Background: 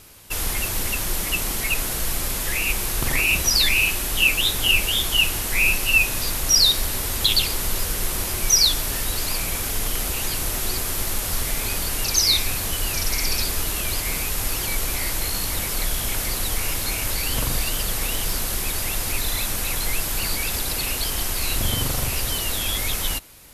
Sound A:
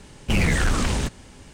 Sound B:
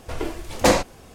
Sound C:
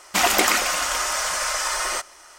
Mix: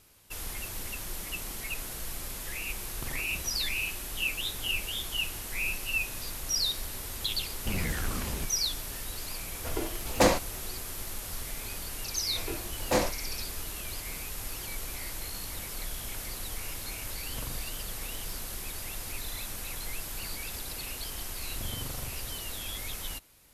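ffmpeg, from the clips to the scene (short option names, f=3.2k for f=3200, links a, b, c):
-filter_complex "[2:a]asplit=2[a][b];[0:a]volume=-13dB[c];[b]flanger=delay=19:depth=5.2:speed=2.2[d];[1:a]atrim=end=1.53,asetpts=PTS-STARTPTS,volume=-12dB,afade=t=in:d=0.004:c=hsin,afade=t=out:st=1.526:d=0.004:c=hsin,adelay=7370[e];[a]atrim=end=1.14,asetpts=PTS-STARTPTS,volume=-5.5dB,afade=t=in:d=0.004:c=hsin,afade=t=out:st=1.136:d=0.004:c=hsin,adelay=9560[f];[d]atrim=end=1.14,asetpts=PTS-STARTPTS,volume=-7dB,afade=t=in:d=0.004:c=hsin,afade=t=out:st=1.136:d=0.004:c=hsin,adelay=12270[g];[c][e][f][g]amix=inputs=4:normalize=0"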